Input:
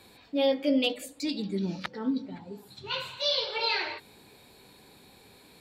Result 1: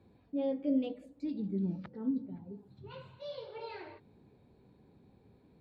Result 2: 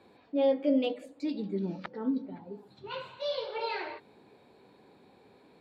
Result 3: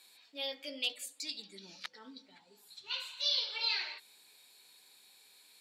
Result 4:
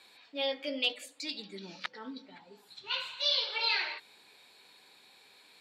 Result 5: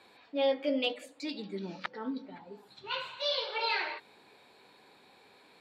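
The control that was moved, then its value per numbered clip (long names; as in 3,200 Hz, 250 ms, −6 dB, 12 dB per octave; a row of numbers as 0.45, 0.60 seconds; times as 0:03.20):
resonant band-pass, frequency: 100, 450, 7,900, 2,900, 1,200 Hertz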